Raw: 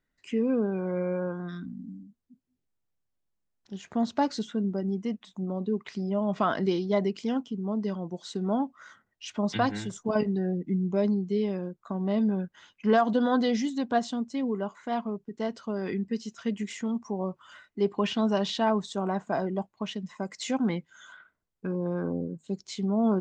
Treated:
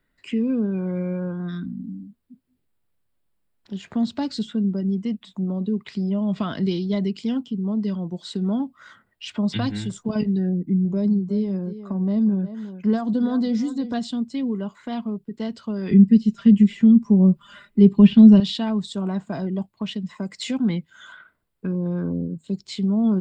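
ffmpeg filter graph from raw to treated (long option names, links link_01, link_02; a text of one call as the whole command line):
ffmpeg -i in.wav -filter_complex "[0:a]asettb=1/sr,asplit=3[link_01][link_02][link_03];[link_01]atrim=end=10.494[link_04];[link_02]atrim=start=10.49:end=13.94,asetpts=PTS-STARTPTS,afade=type=in:duration=0.004:curve=qsin,afade=type=out:start_time=3.446:duration=0.004:curve=qsin,equalizer=frequency=2900:width_type=o:width=1.1:gain=-13,aecho=1:1:357:0.178,atrim=end_sample=152145[link_05];[link_03]atrim=start=13.936[link_06];[link_04][link_05]acrossfade=duration=0.004:curve1=hsin:curve2=qsin[link_07];[link_07][link_06]acrossfade=duration=0.004:curve1=qsin:curve2=hsin,asettb=1/sr,asplit=3[link_08][link_09][link_10];[link_08]atrim=end=15.914[link_11];[link_09]atrim=start=15.91:end=18.4,asetpts=PTS-STARTPTS,afade=type=in:duration=0.004:curve=qsin,afade=type=out:start_time=2.486:duration=0.004:curve=qsin,aecho=1:1:5:0.72,atrim=end_sample=109809,acrossover=split=3100[link_12][link_13];[link_13]acompressor=threshold=-56dB:ratio=4:attack=1:release=60[link_14];[link_12][link_14]amix=inputs=2:normalize=0,lowshelf=frequency=360:gain=11[link_15];[link_10]atrim=start=18.396[link_16];[link_11][link_15]acrossfade=duration=0.004:curve1=hsin:curve2=qsin[link_17];[link_17][link_16]acrossfade=duration=0.004:curve1=qsin:curve2=hsin,equalizer=frequency=6200:width=3.1:gain=-13.5,bandreject=frequency=780:width=18,acrossover=split=250|3000[link_18][link_19][link_20];[link_19]acompressor=threshold=-53dB:ratio=2[link_21];[link_18][link_21][link_20]amix=inputs=3:normalize=0,volume=9dB" out.wav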